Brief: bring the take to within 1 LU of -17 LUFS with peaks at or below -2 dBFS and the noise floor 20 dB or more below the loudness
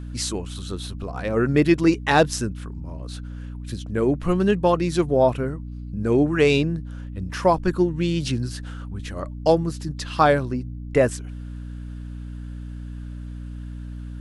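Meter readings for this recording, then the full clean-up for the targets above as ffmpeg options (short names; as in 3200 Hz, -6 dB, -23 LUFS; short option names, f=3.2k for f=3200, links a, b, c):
hum 60 Hz; harmonics up to 300 Hz; hum level -31 dBFS; loudness -22.0 LUFS; peak -3.5 dBFS; loudness target -17.0 LUFS
-> -af "bandreject=f=60:t=h:w=6,bandreject=f=120:t=h:w=6,bandreject=f=180:t=h:w=6,bandreject=f=240:t=h:w=6,bandreject=f=300:t=h:w=6"
-af "volume=5dB,alimiter=limit=-2dB:level=0:latency=1"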